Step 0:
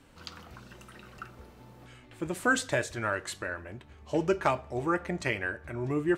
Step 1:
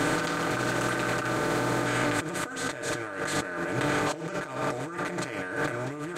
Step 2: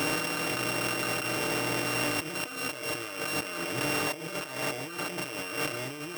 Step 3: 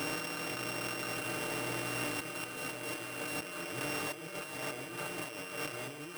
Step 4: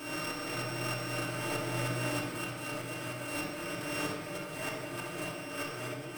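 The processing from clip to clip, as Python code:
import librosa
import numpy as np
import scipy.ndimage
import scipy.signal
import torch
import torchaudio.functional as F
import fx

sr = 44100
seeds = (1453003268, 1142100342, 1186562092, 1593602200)

y1 = fx.bin_compress(x, sr, power=0.4)
y1 = y1 + 0.83 * np.pad(y1, (int(6.6 * sr / 1000.0), 0))[:len(y1)]
y1 = fx.over_compress(y1, sr, threshold_db=-31.0, ratio=-1.0)
y2 = np.r_[np.sort(y1[:len(y1) // 16 * 16].reshape(-1, 16), axis=1).ravel(), y1[len(y1) // 16 * 16:]]
y2 = fx.low_shelf(y2, sr, hz=330.0, db=-5.0)
y2 = y2 * librosa.db_to_amplitude(-1.5)
y3 = y2 + 10.0 ** (-7.0 / 20.0) * np.pad(y2, (int(1166 * sr / 1000.0), 0))[:len(y2)]
y3 = y3 * librosa.db_to_amplitude(-7.5)
y4 = fx.tremolo_shape(y3, sr, shape='saw_up', hz=3.2, depth_pct=70)
y4 = fx.room_shoebox(y4, sr, seeds[0], volume_m3=1800.0, walls='mixed', distance_m=2.8)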